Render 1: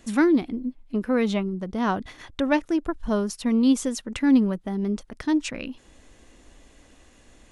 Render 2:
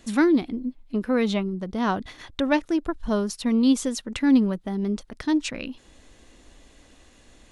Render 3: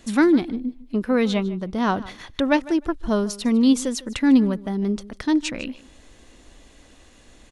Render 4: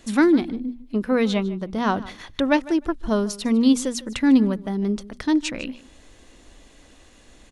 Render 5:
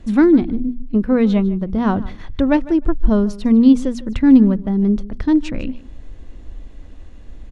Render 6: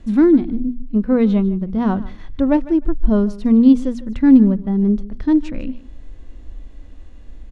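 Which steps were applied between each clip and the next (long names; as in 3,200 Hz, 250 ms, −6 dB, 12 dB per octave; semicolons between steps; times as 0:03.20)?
parametric band 4,000 Hz +4 dB 0.63 octaves
repeating echo 152 ms, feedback 16%, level −19 dB; level +2.5 dB
mains-hum notches 60/120/180/240 Hz
RIAA equalisation playback
harmonic and percussive parts rebalanced harmonic +8 dB; level −8 dB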